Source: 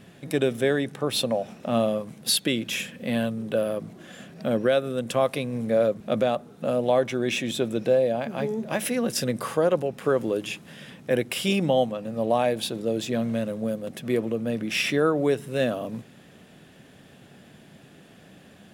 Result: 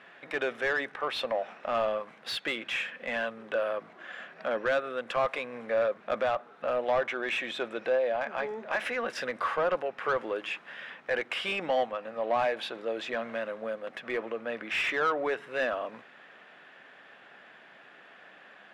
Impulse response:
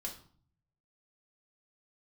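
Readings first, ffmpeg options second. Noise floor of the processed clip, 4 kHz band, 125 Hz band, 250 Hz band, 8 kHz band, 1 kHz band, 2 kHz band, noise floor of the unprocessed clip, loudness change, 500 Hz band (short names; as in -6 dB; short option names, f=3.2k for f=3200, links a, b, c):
-54 dBFS, -7.0 dB, -21.0 dB, -15.5 dB, under -15 dB, -0.5 dB, +1.5 dB, -51 dBFS, -5.5 dB, -6.0 dB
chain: -filter_complex "[0:a]bandpass=f=1.6k:t=q:w=1.1:csg=0,asplit=2[a][b];[b]highpass=f=720:p=1,volume=16dB,asoftclip=type=tanh:threshold=-16.5dB[c];[a][c]amix=inputs=2:normalize=0,lowpass=f=1.5k:p=1,volume=-6dB"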